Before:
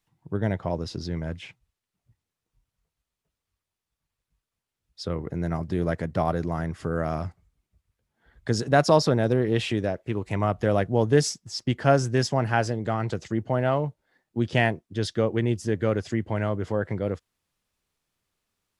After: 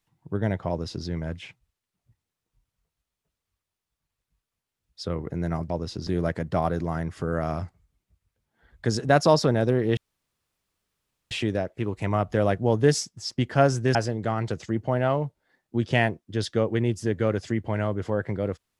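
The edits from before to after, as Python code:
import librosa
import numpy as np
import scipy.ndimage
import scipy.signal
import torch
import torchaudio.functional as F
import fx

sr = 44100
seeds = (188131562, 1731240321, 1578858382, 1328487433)

y = fx.edit(x, sr, fx.duplicate(start_s=0.69, length_s=0.37, to_s=5.7),
    fx.insert_room_tone(at_s=9.6, length_s=1.34),
    fx.cut(start_s=12.24, length_s=0.33), tone=tone)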